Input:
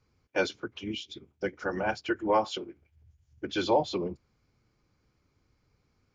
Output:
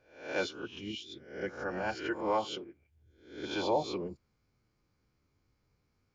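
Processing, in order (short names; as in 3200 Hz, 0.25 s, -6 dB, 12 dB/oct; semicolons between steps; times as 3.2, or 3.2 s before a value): spectral swells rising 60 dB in 0.53 s; gain -6.5 dB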